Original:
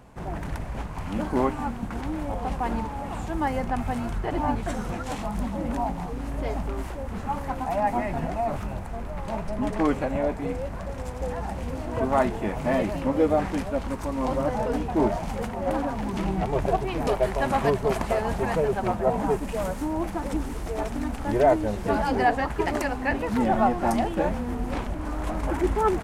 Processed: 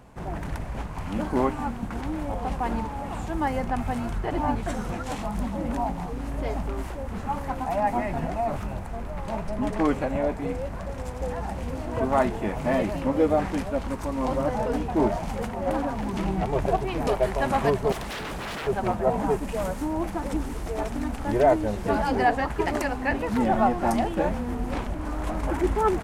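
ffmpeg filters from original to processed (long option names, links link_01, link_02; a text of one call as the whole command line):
ffmpeg -i in.wav -filter_complex "[0:a]asettb=1/sr,asplit=3[link_01][link_02][link_03];[link_01]atrim=end=17.924[link_04];[link_02]atrim=start=17.92:end=18.67,asetpts=PTS-STARTPTS,afade=type=in:duration=0.004:curve=qsin,afade=type=out:start_time=0.746:duration=0.004:curve=qsin,aeval=exprs='0.0376*(abs(mod(val(0)/0.0376+3,4)-2)-1)':channel_layout=same[link_05];[link_03]atrim=start=18.666[link_06];[link_04][link_05]acrossfade=duration=0.004:curve1=hsin:curve2=qsin[link_07];[link_07][link_06]acrossfade=duration=0.004:curve1=qsin:curve2=hsin" out.wav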